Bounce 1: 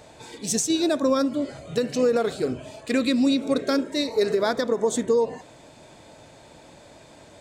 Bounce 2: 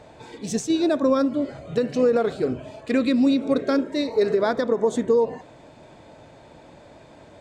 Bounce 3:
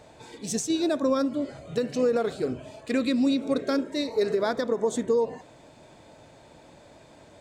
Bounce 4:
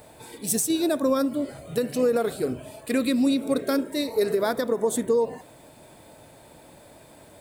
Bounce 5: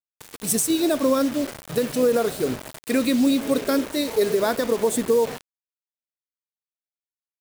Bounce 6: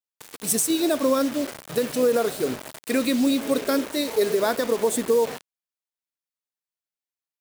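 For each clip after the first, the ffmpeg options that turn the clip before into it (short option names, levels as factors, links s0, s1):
-af "lowpass=f=2000:p=1,volume=1.26"
-af "highshelf=f=5200:g=10,volume=0.596"
-af "aexciter=amount=10.1:drive=4.5:freq=9200,volume=1.19"
-af "acrusher=bits=5:mix=0:aa=0.000001,volume=1.33"
-af "lowshelf=f=130:g=-10.5"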